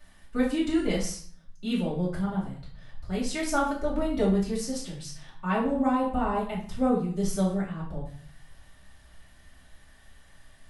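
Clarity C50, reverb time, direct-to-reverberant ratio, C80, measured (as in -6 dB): 5.5 dB, 0.50 s, -10.5 dB, 9.5 dB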